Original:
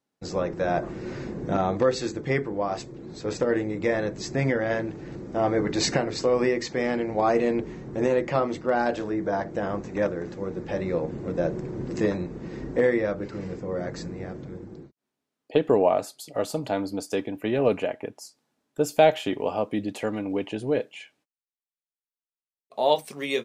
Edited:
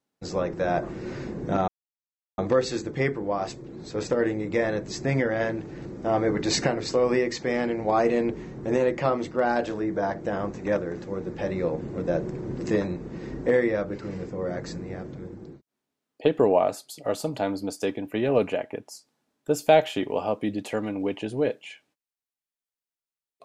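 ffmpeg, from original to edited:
ffmpeg -i in.wav -filter_complex "[0:a]asplit=2[link_01][link_02];[link_01]atrim=end=1.68,asetpts=PTS-STARTPTS,afade=type=out:start_time=1.676:duration=0.004:curve=hsin,apad=pad_dur=0.7[link_03];[link_02]atrim=start=1.68,asetpts=PTS-STARTPTS,afade=type=in:duration=0.004:curve=hsin[link_04];[link_03][link_04]concat=n=2:v=0:a=1" out.wav

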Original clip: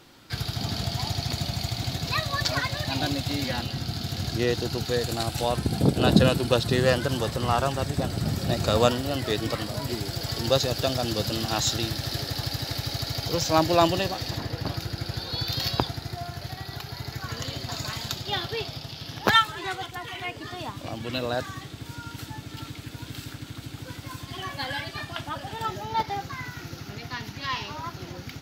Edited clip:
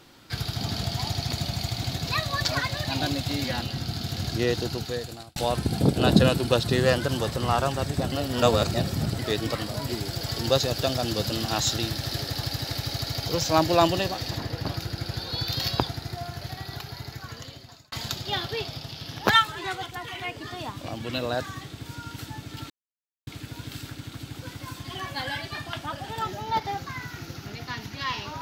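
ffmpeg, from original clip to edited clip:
ffmpeg -i in.wav -filter_complex "[0:a]asplit=6[link_01][link_02][link_03][link_04][link_05][link_06];[link_01]atrim=end=5.36,asetpts=PTS-STARTPTS,afade=type=out:start_time=4.63:duration=0.73[link_07];[link_02]atrim=start=5.36:end=8.122,asetpts=PTS-STARTPTS,afade=type=in:duration=0.004:curve=hsin[link_08];[link_03]atrim=start=8.118:end=9.192,asetpts=PTS-STARTPTS,areverse[link_09];[link_04]atrim=start=9.188:end=17.92,asetpts=PTS-STARTPTS,afade=type=out:start_time=7.552:duration=1.18[link_10];[link_05]atrim=start=17.92:end=22.7,asetpts=PTS-STARTPTS,afade=type=in:duration=0.004:curve=hsin,afade=type=out:start_time=4.776:duration=0.004:curve=hsin,apad=pad_dur=0.57[link_11];[link_06]atrim=start=22.7,asetpts=PTS-STARTPTS,afade=type=in:duration=0.004:curve=hsin[link_12];[link_07][link_08]concat=n=2:v=0:a=1[link_13];[link_13][link_09]acrossfade=duration=0.004:curve1=hsin:curve2=hsin[link_14];[link_10][link_11][link_12]concat=n=3:v=0:a=1[link_15];[link_14][link_15]acrossfade=duration=0.004:curve1=hsin:curve2=hsin" out.wav

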